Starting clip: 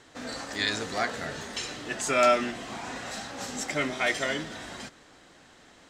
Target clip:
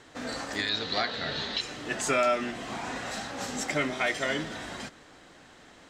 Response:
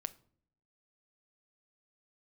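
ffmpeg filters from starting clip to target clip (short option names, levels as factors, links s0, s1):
-filter_complex "[0:a]asettb=1/sr,asplit=3[s0][s1][s2];[s0]atrim=end=0.694[s3];[s1]atrim=start=0.69:end=1.61,asetpts=PTS-STARTPTS,afade=t=in:d=0.004:c=qsin,afade=t=out:st=0.916:d=0.004:c=qsin,lowpass=f=4000:t=q:w=5.4[s4];[s2]atrim=start=1.606[s5];[s3][s4]acrossfade=d=0.004:c1=hsin:c2=qsin[s6];[s6][s5]acrossfade=d=0.004:c1=qsin:c2=hsin,alimiter=limit=0.133:level=0:latency=1:release=383,asplit=2[s7][s8];[1:a]atrim=start_sample=2205,lowpass=4500[s9];[s8][s9]afir=irnorm=-1:irlink=0,volume=0.355[s10];[s7][s10]amix=inputs=2:normalize=0"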